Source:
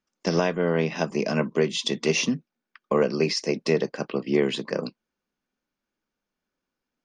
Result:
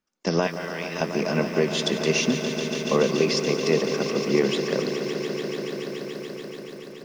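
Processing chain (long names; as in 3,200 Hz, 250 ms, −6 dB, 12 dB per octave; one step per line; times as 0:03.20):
0:00.47–0:01.01: high-pass filter 1,300 Hz 12 dB per octave
echo that builds up and dies away 143 ms, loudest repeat 5, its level −12 dB
feedback echo at a low word length 178 ms, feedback 55%, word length 7 bits, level −12 dB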